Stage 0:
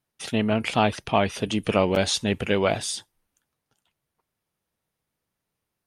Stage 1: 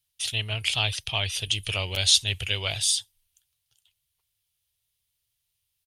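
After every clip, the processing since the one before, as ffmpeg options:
-af "firequalizer=gain_entry='entry(100,0);entry(220,-29);entry(340,-19);entry(680,-15);entry(1400,-12);entry(3100,7);entry(5600,4);entry(11000,7)':delay=0.05:min_phase=1,volume=1.5dB"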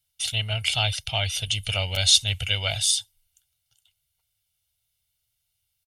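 -af "aecho=1:1:1.4:0.67"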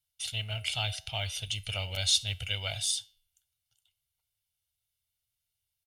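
-filter_complex "[0:a]flanger=delay=9.2:depth=1.1:regen=-87:speed=0.68:shape=sinusoidal,asplit=2[a][b];[b]acrusher=bits=5:mode=log:mix=0:aa=0.000001,volume=-8.5dB[c];[a][c]amix=inputs=2:normalize=0,volume=-6.5dB"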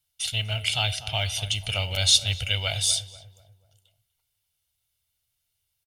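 -filter_complex "[0:a]asplit=2[a][b];[b]adelay=244,lowpass=f=1.2k:p=1,volume=-12dB,asplit=2[c][d];[d]adelay=244,lowpass=f=1.2k:p=1,volume=0.47,asplit=2[e][f];[f]adelay=244,lowpass=f=1.2k:p=1,volume=0.47,asplit=2[g][h];[h]adelay=244,lowpass=f=1.2k:p=1,volume=0.47,asplit=2[i][j];[j]adelay=244,lowpass=f=1.2k:p=1,volume=0.47[k];[a][c][e][g][i][k]amix=inputs=6:normalize=0,volume=7dB"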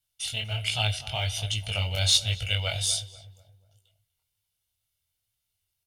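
-filter_complex "[0:a]flanger=delay=18:depth=4.7:speed=1.3,asplit=2[a][b];[b]adynamicsmooth=sensitivity=2:basefreq=760,volume=-12dB[c];[a][c]amix=inputs=2:normalize=0"

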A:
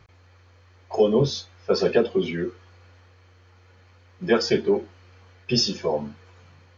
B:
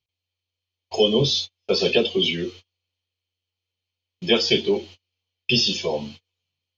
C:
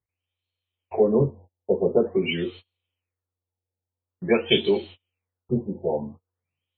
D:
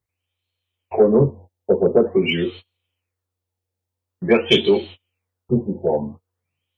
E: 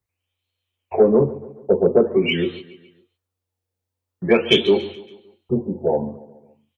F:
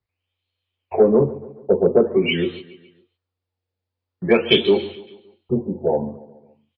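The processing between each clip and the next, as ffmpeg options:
-filter_complex "[0:a]acrossover=split=2900[a][b];[b]acompressor=threshold=-39dB:ratio=4:attack=1:release=60[c];[a][c]amix=inputs=2:normalize=0,agate=range=-35dB:threshold=-40dB:ratio=16:detection=peak,highshelf=f=2.2k:t=q:w=3:g=11.5"
-af "afftfilt=real='re*lt(b*sr/1024,920*pow(4400/920,0.5+0.5*sin(2*PI*0.47*pts/sr)))':imag='im*lt(b*sr/1024,920*pow(4400/920,0.5+0.5*sin(2*PI*0.47*pts/sr)))':win_size=1024:overlap=0.75"
-af "acontrast=48"
-filter_complex "[0:a]acrossover=split=260|1400[a][b][c];[a]alimiter=limit=-18dB:level=0:latency=1:release=275[d];[d][b][c]amix=inputs=3:normalize=0,aecho=1:1:141|282|423|564:0.126|0.0642|0.0327|0.0167"
-af "aresample=11025,aresample=44100"

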